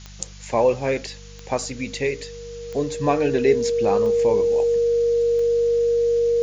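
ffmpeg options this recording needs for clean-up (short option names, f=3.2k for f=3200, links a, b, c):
-af "adeclick=t=4,bandreject=f=49.4:t=h:w=4,bandreject=f=98.8:t=h:w=4,bandreject=f=148.2:t=h:w=4,bandreject=f=197.6:t=h:w=4,bandreject=f=470:w=30,afftdn=nr=27:nf=-40"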